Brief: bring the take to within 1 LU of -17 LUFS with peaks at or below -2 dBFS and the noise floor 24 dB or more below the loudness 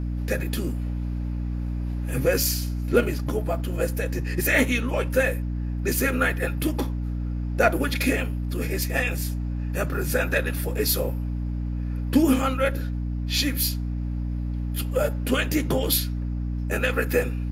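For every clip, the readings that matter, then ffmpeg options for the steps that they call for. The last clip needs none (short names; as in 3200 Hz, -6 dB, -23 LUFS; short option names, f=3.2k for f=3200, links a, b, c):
hum 60 Hz; harmonics up to 300 Hz; hum level -25 dBFS; loudness -25.5 LUFS; peak -6.0 dBFS; loudness target -17.0 LUFS
-> -af "bandreject=f=60:t=h:w=6,bandreject=f=120:t=h:w=6,bandreject=f=180:t=h:w=6,bandreject=f=240:t=h:w=6,bandreject=f=300:t=h:w=6"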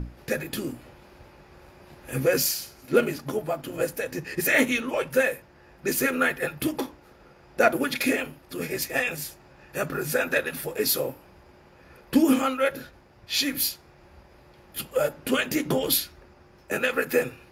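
hum none; loudness -26.0 LUFS; peak -7.5 dBFS; loudness target -17.0 LUFS
-> -af "volume=9dB,alimiter=limit=-2dB:level=0:latency=1"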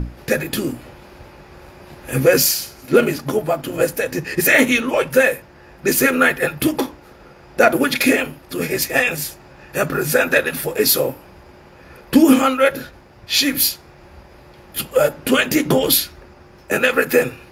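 loudness -17.5 LUFS; peak -2.0 dBFS; noise floor -45 dBFS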